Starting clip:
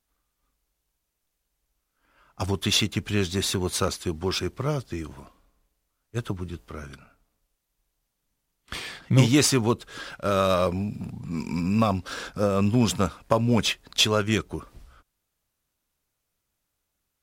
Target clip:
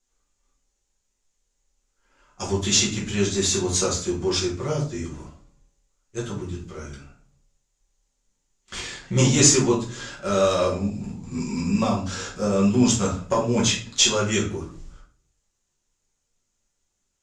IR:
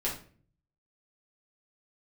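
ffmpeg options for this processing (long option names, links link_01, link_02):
-filter_complex "[0:a]lowpass=frequency=6900:width_type=q:width=6.4,bandreject=frequency=60:width_type=h:width=6,bandreject=frequency=120:width_type=h:width=6,bandreject=frequency=180:width_type=h:width=6,bandreject=frequency=240:width_type=h:width=6[link_01];[1:a]atrim=start_sample=2205[link_02];[link_01][link_02]afir=irnorm=-1:irlink=0,volume=-5.5dB"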